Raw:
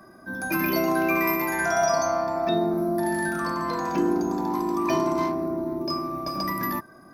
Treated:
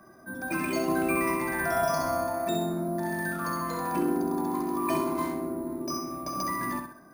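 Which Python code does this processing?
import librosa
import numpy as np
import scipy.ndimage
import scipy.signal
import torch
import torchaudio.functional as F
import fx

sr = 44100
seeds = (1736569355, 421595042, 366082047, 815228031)

y = fx.low_shelf(x, sr, hz=210.0, db=9.0, at=(0.88, 2.27))
y = fx.echo_feedback(y, sr, ms=65, feedback_pct=37, wet_db=-6.0)
y = np.repeat(scipy.signal.resample_poly(y, 1, 4), 4)[:len(y)]
y = y * 10.0 ** (-4.5 / 20.0)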